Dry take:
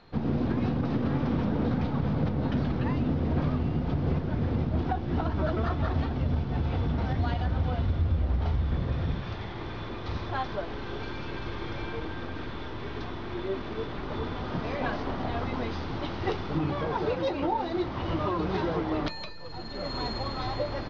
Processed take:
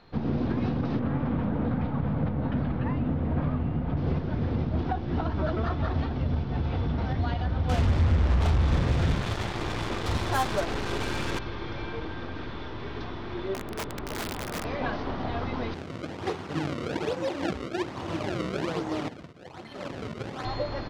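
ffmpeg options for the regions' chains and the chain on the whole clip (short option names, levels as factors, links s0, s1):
-filter_complex "[0:a]asettb=1/sr,asplit=3[s0][s1][s2];[s0]atrim=end=0.994[s3];[s1]atrim=start=0.99:end=3.97,asetpts=PTS-STARTPTS,afade=t=in:d=0.004:c=qsin,afade=t=out:st=2.976:d=0.004:c=qsin,lowpass=2400,equalizer=f=380:t=o:w=0.39:g=-5[s4];[s2]atrim=start=3.966[s5];[s3][s4]acrossfade=d=0.004:c1=hsin:c2=qsin[s6];[s6][s5]acrossfade=d=0.004:c1=qsin:c2=hsin,asettb=1/sr,asplit=3[s7][s8][s9];[s7]atrim=end=7.694[s10];[s8]atrim=start=7.69:end=11.39,asetpts=PTS-STARTPTS,afade=t=in:d=0.004:c=qsin,afade=t=out:st=3.696:d=0.004:c=qsin,acontrast=24,asoftclip=type=hard:threshold=0.141,acrusher=bits=4:mix=0:aa=0.5[s11];[s9]atrim=start=11.386[s12];[s10][s11]acrossfade=d=0.004:c1=hsin:c2=qsin[s13];[s13][s12]acrossfade=d=0.004:c1=qsin:c2=hsin,asettb=1/sr,asplit=3[s14][s15][s16];[s14]atrim=end=13.544[s17];[s15]atrim=start=13.54:end=14.65,asetpts=PTS-STARTPTS,afade=t=in:d=0.004:c=qsin,afade=t=out:st=1.106:d=0.004:c=qsin,lowpass=f=1800:p=1,aeval=exprs='(mod(22.4*val(0)+1,2)-1)/22.4':c=same[s18];[s16]atrim=start=14.646[s19];[s17][s18]acrossfade=d=0.004:c1=hsin:c2=qsin[s20];[s20][s19]acrossfade=d=0.004:c1=qsin:c2=hsin,asettb=1/sr,asplit=3[s21][s22][s23];[s21]atrim=end=15.744[s24];[s22]atrim=start=15.74:end=20.45,asetpts=PTS-STARTPTS,afade=t=in:d=0.004:c=qsin,afade=t=out:st=4.706:d=0.004:c=qsin,acrusher=samples=30:mix=1:aa=0.000001:lfo=1:lforange=48:lforate=1.2,aeval=exprs='sgn(val(0))*max(abs(val(0))-0.00596,0)':c=same,highpass=110,lowpass=4600[s25];[s23]atrim=start=20.446[s26];[s24][s25]acrossfade=d=0.004:c1=hsin:c2=qsin[s27];[s27][s26]acrossfade=d=0.004:c1=qsin:c2=hsin"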